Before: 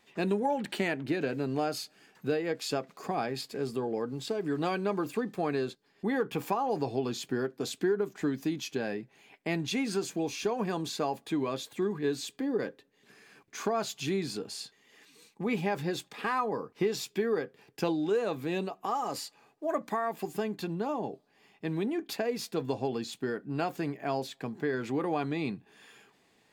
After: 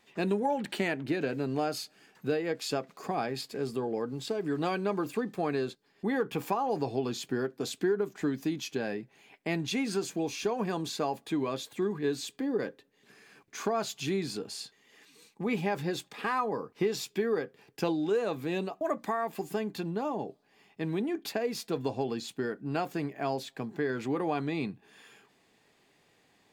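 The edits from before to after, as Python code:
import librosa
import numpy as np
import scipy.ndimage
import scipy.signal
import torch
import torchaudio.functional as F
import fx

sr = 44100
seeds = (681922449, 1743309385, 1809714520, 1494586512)

y = fx.edit(x, sr, fx.cut(start_s=18.81, length_s=0.84), tone=tone)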